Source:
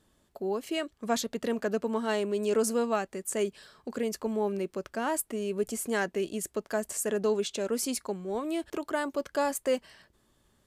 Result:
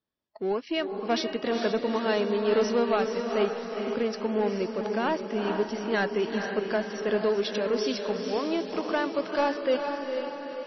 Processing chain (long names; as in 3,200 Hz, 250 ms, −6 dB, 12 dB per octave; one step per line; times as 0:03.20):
mu-law and A-law mismatch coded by A
noise reduction from a noise print of the clip's start 17 dB
high-pass filter 130 Hz 6 dB per octave
0:07.20–0:09.52: dynamic equaliser 220 Hz, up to −3 dB, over −49 dBFS, Q 3.6
soft clipping −23 dBFS, distortion −17 dB
feedback delay with all-pass diffusion 456 ms, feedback 54%, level −5 dB
level +6 dB
MP3 24 kbit/s 22,050 Hz